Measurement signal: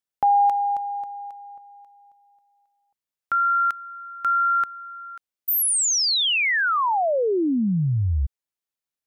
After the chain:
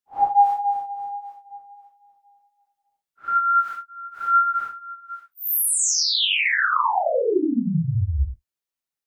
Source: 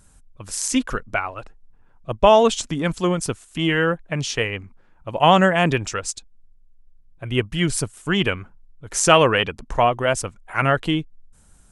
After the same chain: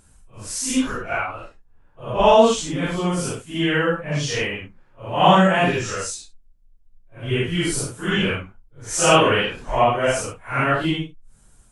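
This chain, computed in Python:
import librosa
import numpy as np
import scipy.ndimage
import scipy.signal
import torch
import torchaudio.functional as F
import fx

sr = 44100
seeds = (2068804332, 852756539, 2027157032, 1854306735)

y = fx.phase_scramble(x, sr, seeds[0], window_ms=200)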